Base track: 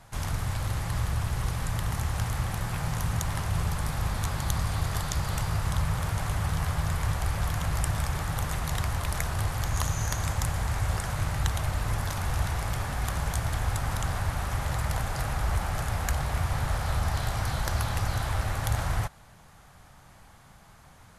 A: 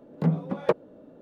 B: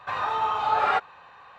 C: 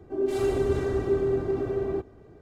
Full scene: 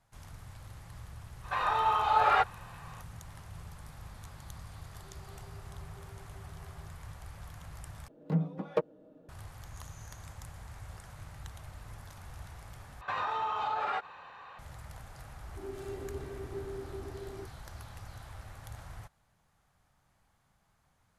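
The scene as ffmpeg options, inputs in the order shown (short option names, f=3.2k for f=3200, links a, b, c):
-filter_complex "[2:a]asplit=2[a][b];[3:a]asplit=2[c][d];[0:a]volume=-18.5dB[e];[a]highpass=280[f];[c]asplit=3[g][h][i];[g]bandpass=f=730:t=q:w=8,volume=0dB[j];[h]bandpass=f=1.09k:t=q:w=8,volume=-6dB[k];[i]bandpass=f=2.44k:t=q:w=8,volume=-9dB[l];[j][k][l]amix=inputs=3:normalize=0[m];[1:a]aecho=1:1:6.4:0.48[n];[b]acompressor=threshold=-29dB:ratio=6:attack=3.2:release=140:knee=1:detection=peak[o];[e]asplit=3[p][q][r];[p]atrim=end=8.084[s];[n]atrim=end=1.21,asetpts=PTS-STARTPTS,volume=-8.5dB[t];[q]atrim=start=9.286:end=13.014[u];[o]atrim=end=1.58,asetpts=PTS-STARTPTS,volume=-0.5dB[v];[r]atrim=start=14.586[w];[f]atrim=end=1.58,asetpts=PTS-STARTPTS,volume=-2dB,afade=t=in:d=0.004:c=hsin,afade=t=out:st=1.576:d=0.004:c=hsin,adelay=1440[x];[m]atrim=end=2.41,asetpts=PTS-STARTPTS,volume=-16.5dB,afade=t=in:d=0.004:c=hsin,afade=t=out:st=2.406:d=0.004:c=hsin,adelay=4870[y];[d]atrim=end=2.41,asetpts=PTS-STARTPTS,volume=-16.5dB,afade=t=in:d=0.004:c=hsin,afade=t=out:st=2.406:d=0.004:c=hsin,adelay=15450[z];[s][t]acrossfade=d=0.004:c1=hsin:c2=hsin[aa];[aa][u]acrossfade=d=0.004:c1=hsin:c2=hsin[ab];[ab][v]acrossfade=d=0.004:c1=hsin:c2=hsin[ac];[ac][w]acrossfade=d=0.004:c1=hsin:c2=hsin[ad];[ad][x][y][z]amix=inputs=4:normalize=0"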